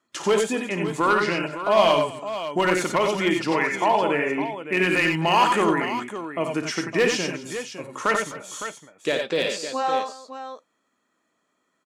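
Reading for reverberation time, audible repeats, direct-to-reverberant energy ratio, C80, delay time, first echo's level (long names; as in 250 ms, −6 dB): no reverb audible, 4, no reverb audible, no reverb audible, 55 ms, −10.0 dB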